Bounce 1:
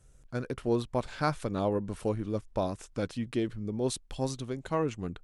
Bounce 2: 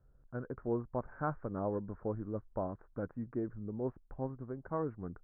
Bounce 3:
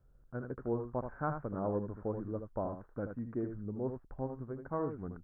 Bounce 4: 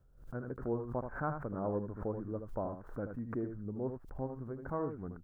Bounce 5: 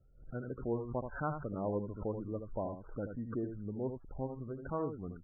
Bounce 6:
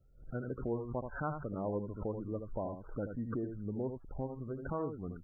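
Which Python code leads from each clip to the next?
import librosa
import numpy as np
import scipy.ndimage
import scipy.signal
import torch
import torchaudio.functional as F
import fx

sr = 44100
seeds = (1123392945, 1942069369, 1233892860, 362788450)

y1 = scipy.signal.sosfilt(scipy.signal.butter(8, 1600.0, 'lowpass', fs=sr, output='sos'), x)
y1 = F.gain(torch.from_numpy(y1), -6.5).numpy()
y2 = y1 + 10.0 ** (-7.5 / 20.0) * np.pad(y1, (int(78 * sr / 1000.0), 0))[:len(y1)]
y3 = fx.pre_swell(y2, sr, db_per_s=110.0)
y3 = F.gain(torch.from_numpy(y3), -1.0).numpy()
y4 = fx.spec_topn(y3, sr, count=32)
y5 = fx.recorder_agc(y4, sr, target_db=-27.0, rise_db_per_s=9.6, max_gain_db=30)
y5 = F.gain(torch.from_numpy(y5), -1.0).numpy()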